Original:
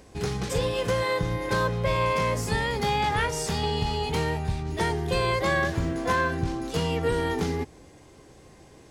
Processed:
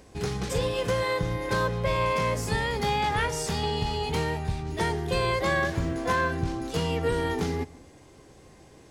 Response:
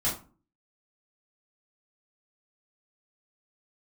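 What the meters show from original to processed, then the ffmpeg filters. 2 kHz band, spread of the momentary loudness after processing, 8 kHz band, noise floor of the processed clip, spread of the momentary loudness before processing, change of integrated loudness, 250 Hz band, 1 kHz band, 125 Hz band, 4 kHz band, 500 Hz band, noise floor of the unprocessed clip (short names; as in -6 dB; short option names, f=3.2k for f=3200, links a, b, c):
-1.0 dB, 5 LU, -1.0 dB, -53 dBFS, 5 LU, -1.0 dB, -1.0 dB, -1.0 dB, -1.0 dB, -1.0 dB, -1.0 dB, -52 dBFS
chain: -filter_complex "[0:a]asplit=2[a][b];[1:a]atrim=start_sample=2205,adelay=105[c];[b][c]afir=irnorm=-1:irlink=0,volume=-29.5dB[d];[a][d]amix=inputs=2:normalize=0,volume=-1dB"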